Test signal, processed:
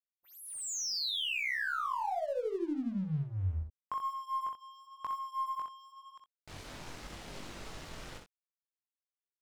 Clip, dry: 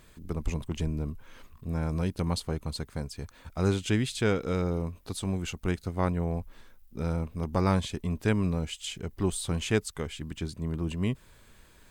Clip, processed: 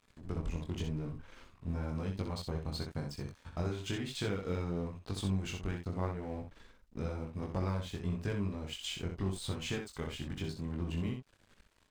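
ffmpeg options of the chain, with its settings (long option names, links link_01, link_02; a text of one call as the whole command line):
ffmpeg -i in.wav -af "lowpass=6600,acompressor=threshold=-31dB:ratio=10,flanger=delay=20:depth=3.6:speed=0.95,aeval=exprs='sgn(val(0))*max(abs(val(0))-0.00158,0)':channel_layout=same,aecho=1:1:20|63:0.224|0.501,aeval=exprs='0.0668*(cos(1*acos(clip(val(0)/0.0668,-1,1)))-cos(1*PI/2))+0.000376*(cos(8*acos(clip(val(0)/0.0668,-1,1)))-cos(8*PI/2))':channel_layout=same,volume=2dB" out.wav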